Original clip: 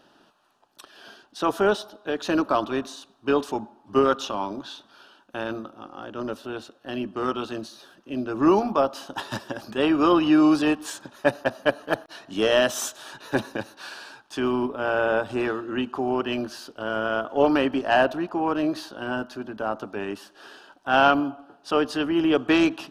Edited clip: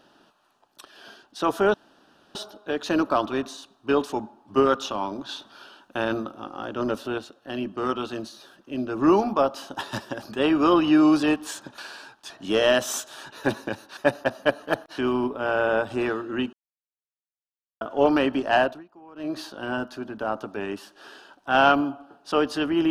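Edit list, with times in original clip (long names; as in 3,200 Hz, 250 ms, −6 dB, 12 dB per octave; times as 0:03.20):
0:01.74: splice in room tone 0.61 s
0:04.68–0:06.57: clip gain +4.5 dB
0:11.17–0:12.18: swap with 0:13.85–0:14.37
0:15.92–0:17.20: silence
0:17.95–0:18.81: duck −23 dB, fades 0.28 s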